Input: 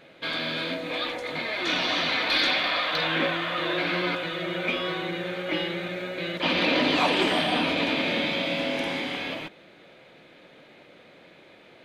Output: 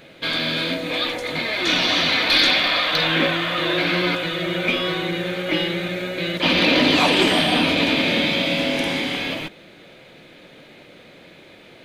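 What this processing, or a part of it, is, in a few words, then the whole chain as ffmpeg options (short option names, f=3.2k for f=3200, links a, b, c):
smiley-face EQ: -af "lowshelf=f=85:g=6,equalizer=f=950:t=o:w=2.3:g=-4,highshelf=f=7.1k:g=6,volume=7.5dB"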